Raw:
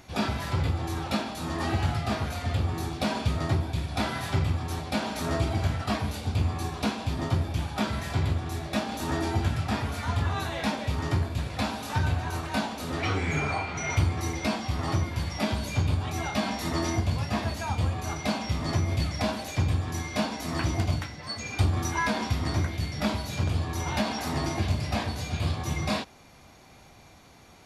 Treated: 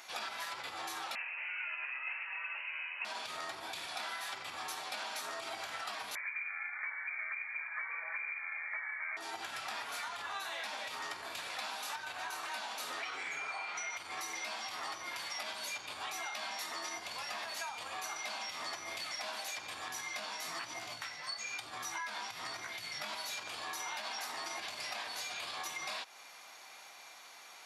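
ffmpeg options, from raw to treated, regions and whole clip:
ffmpeg -i in.wav -filter_complex "[0:a]asettb=1/sr,asplit=3[link_01][link_02][link_03];[link_01]atrim=end=1.154[link_04];[link_02]atrim=start=1.15:end=3.05,asetpts=PTS-STARTPTS,afade=type=in:duration=0.004:curve=qsin,afade=type=out:start_time=1.896:duration=0.004:curve=qsin,highpass=frequency=580:width=0.5412,highpass=frequency=580:width=1.3066,lowpass=frequency=2800:width_type=q:width=0.5098,lowpass=frequency=2800:width_type=q:width=0.6013,lowpass=frequency=2800:width_type=q:width=0.9,lowpass=frequency=2800:width_type=q:width=2.563,afreqshift=-3300[link_05];[link_03]atrim=start=3.046[link_06];[link_04][link_05]acrossfade=duration=0.004:curve1=hsin:curve2=qsin[link_07];[link_07][link_06]acrossfade=duration=0.004:curve1=qsin:curve2=hsin,asettb=1/sr,asplit=3[link_08][link_09][link_10];[link_08]atrim=end=6.154[link_11];[link_09]atrim=start=6.15:end=9.17,asetpts=PTS-STARTPTS,afade=type=in:duration=0.004:curve=qsin,afade=type=out:start_time=3.016:duration=0.004:curve=qsin,highpass=160,lowpass=frequency=2100:width_type=q:width=0.5098,lowpass=frequency=2100:width_type=q:width=0.6013,lowpass=frequency=2100:width_type=q:width=0.9,lowpass=frequency=2100:width_type=q:width=2.563,afreqshift=-2500[link_12];[link_10]atrim=start=9.166[link_13];[link_11][link_12]acrossfade=duration=0.004:curve1=hsin:curve2=qsin[link_14];[link_14][link_13]acrossfade=duration=0.004:curve1=qsin:curve2=hsin,asettb=1/sr,asplit=3[link_15][link_16][link_17];[link_15]atrim=end=19.884[link_18];[link_16]atrim=start=19.88:end=23.13,asetpts=PTS-STARTPTS,afade=type=in:duration=0.004:curve=qsin,afade=type=out:start_time=3.246:duration=0.004:curve=qsin,equalizer=frequency=120:width_type=o:width=0.93:gain=10.5,flanger=delay=16:depth=3.7:speed=1.1[link_19];[link_17]atrim=start=23.126[link_20];[link_18][link_19]acrossfade=duration=0.004:curve1=hsin:curve2=qsin[link_21];[link_21][link_20]acrossfade=duration=0.004:curve1=qsin:curve2=hsin,alimiter=limit=-23dB:level=0:latency=1:release=64,highpass=1000,acompressor=threshold=-42dB:ratio=6,volume=4dB" out.wav

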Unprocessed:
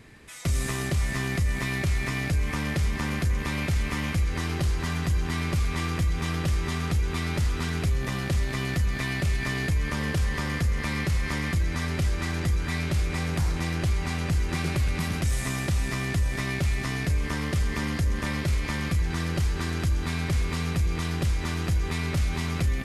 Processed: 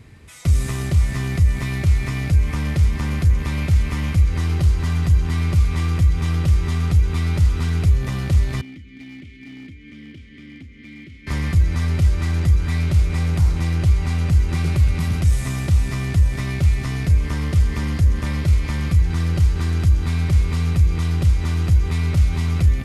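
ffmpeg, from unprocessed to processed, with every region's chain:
ffmpeg -i in.wav -filter_complex "[0:a]asettb=1/sr,asplit=3[link_01][link_02][link_03];[link_01]atrim=end=8.614[link_04];[link_02]atrim=start=8.61:end=11.27,asetpts=PTS-STARTPTS,afade=type=in:duration=0.004:curve=qsin,afade=type=out:start_time=2.656:duration=0.004:curve=qsin,asplit=3[link_05][link_06][link_07];[link_05]bandpass=frequency=270:width_type=q:width=8,volume=0dB[link_08];[link_06]bandpass=frequency=2290:width_type=q:width=8,volume=-6dB[link_09];[link_07]bandpass=frequency=3010:width_type=q:width=8,volume=-9dB[link_10];[link_08][link_09][link_10]amix=inputs=3:normalize=0,equalizer=frequency=160:width=4.8:gain=-3.5,volume=35.5dB,asoftclip=hard,volume=-35.5dB[link_11];[link_03]atrim=start=11.266[link_12];[link_04][link_11]acrossfade=duration=0.004:curve1=hsin:curve2=qsin[link_13];[link_13][link_12]acrossfade=duration=0.004:curve1=qsin:curve2=hsin,equalizer=frequency=81:width_type=o:width=1.8:gain=11.5,bandreject=frequency=1700:width=13" out.wav

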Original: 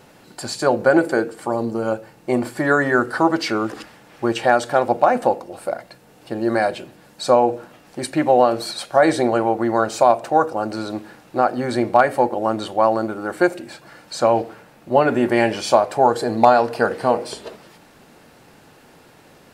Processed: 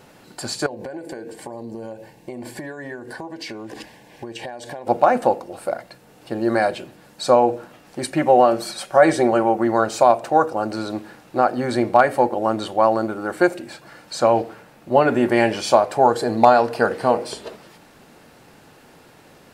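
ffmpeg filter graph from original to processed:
ffmpeg -i in.wav -filter_complex "[0:a]asettb=1/sr,asplit=3[link_01][link_02][link_03];[link_01]atrim=end=0.664[link_04];[link_02]atrim=start=0.66:end=4.87,asetpts=PTS-STARTPTS,afade=type=in:duration=0.004:curve=qsin,afade=type=out:start_time=4.206:duration=0.004:curve=qsin,acompressor=threshold=-28dB:ratio=16:attack=3.2:release=140:knee=1:detection=peak,asuperstop=centerf=1300:order=4:qfactor=3.1[link_05];[link_03]atrim=start=4.866[link_06];[link_04][link_05]acrossfade=duration=0.004:curve1=hsin:curve2=qsin[link_07];[link_07][link_06]acrossfade=duration=0.004:curve1=qsin:curve2=hsin,asettb=1/sr,asplit=3[link_08][link_09][link_10];[link_08]atrim=end=8.104[link_11];[link_09]atrim=start=8.1:end=9.67,asetpts=PTS-STARTPTS,afade=type=in:duration=0.004:curve=qsin,afade=type=out:start_time=1.566:duration=0.004:curve=qsin,equalizer=frequency=4000:width=5:gain=-6.5,aecho=1:1:5.3:0.35,atrim=end_sample=69237[link_12];[link_10]atrim=start=9.666[link_13];[link_11][link_12]acrossfade=duration=0.004:curve1=hsin:curve2=qsin[link_14];[link_14][link_13]acrossfade=duration=0.004:curve1=qsin:curve2=hsin" out.wav

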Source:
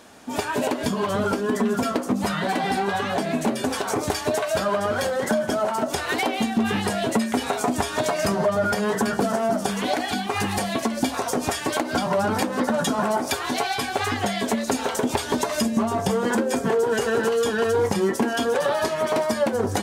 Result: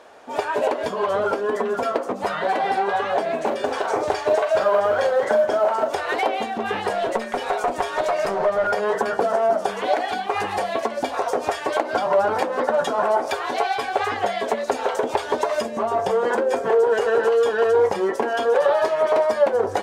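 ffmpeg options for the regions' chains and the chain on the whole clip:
ffmpeg -i in.wav -filter_complex "[0:a]asettb=1/sr,asplit=3[link_01][link_02][link_03];[link_01]atrim=end=3.384[link_04];[link_02]atrim=start=3.38:end=5.9,asetpts=PTS-STARTPTS,afade=type=in:duration=0.004:curve=qsin,afade=type=out:start_time=2.516:duration=0.004:curve=qsin,lowpass=9200,asplit=2[link_05][link_06];[link_06]adelay=41,volume=-8dB[link_07];[link_05][link_07]amix=inputs=2:normalize=0,atrim=end_sample=111132,acrusher=bits=6:mode=log:mix=0:aa=0.000001[link_08];[link_03]atrim=start=5.896[link_09];[link_04][link_08]acrossfade=duration=0.004:curve1=hsin:curve2=qsin[link_10];[link_10][link_09]acrossfade=duration=0.004:curve1=qsin:curve2=hsin,asettb=1/sr,asplit=3[link_11][link_12][link_13];[link_11]atrim=end=6.934[link_14];[link_12]atrim=start=6.93:end=8.67,asetpts=PTS-STARTPTS,afade=type=in:duration=0.004:curve=qsin,afade=type=out:start_time=1.736:duration=0.004:curve=qsin,aecho=1:1:5.5:0.31,atrim=end_sample=76734,aeval=exprs='clip(val(0),-1,0.0668)':channel_layout=same[link_15];[link_13]atrim=start=8.666[link_16];[link_14][link_15]acrossfade=duration=0.004:curve1=hsin:curve2=qsin[link_17];[link_17][link_16]acrossfade=duration=0.004:curve1=qsin:curve2=hsin,lowpass=frequency=1700:poles=1,lowshelf=frequency=330:width_type=q:width=1.5:gain=-12.5,volume=3dB" out.wav

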